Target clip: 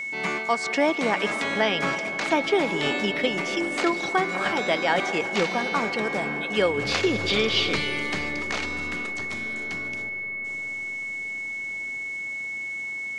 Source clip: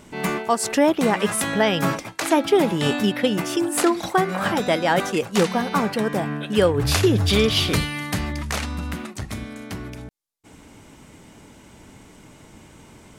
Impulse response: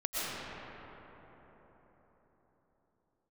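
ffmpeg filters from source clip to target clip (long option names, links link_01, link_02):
-filter_complex "[0:a]acrossover=split=4400[link_01][link_02];[link_02]acompressor=threshold=-46dB:ratio=4:attack=1:release=60[link_03];[link_01][link_03]amix=inputs=2:normalize=0,lowpass=frequency=7200:width=0.5412,lowpass=frequency=7200:width=1.3066,aemphasis=mode=production:type=bsi,acrossover=split=120[link_04][link_05];[link_04]aeval=exprs='clip(val(0),-1,0.00422)':channel_layout=same[link_06];[link_06][link_05]amix=inputs=2:normalize=0,aeval=exprs='val(0)+0.0501*sin(2*PI*2200*n/s)':channel_layout=same,asplit=2[link_07][link_08];[1:a]atrim=start_sample=2205,asetrate=27783,aresample=44100[link_09];[link_08][link_09]afir=irnorm=-1:irlink=0,volume=-20dB[link_10];[link_07][link_10]amix=inputs=2:normalize=0,volume=-4dB"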